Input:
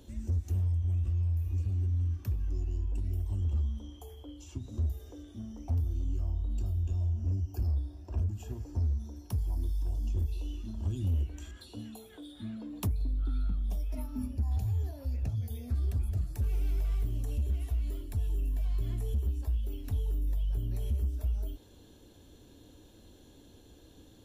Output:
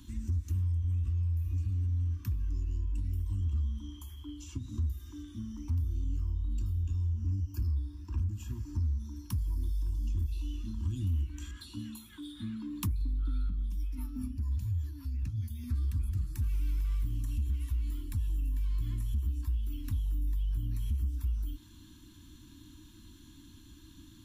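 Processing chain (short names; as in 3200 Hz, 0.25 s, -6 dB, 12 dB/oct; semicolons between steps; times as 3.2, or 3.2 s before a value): elliptic band-stop 320–990 Hz, stop band 40 dB; compressor 1.5:1, threshold -39 dBFS, peak gain reduction 4.5 dB; 13.49–15.64 rotary speaker horn 5 Hz; gain +3.5 dB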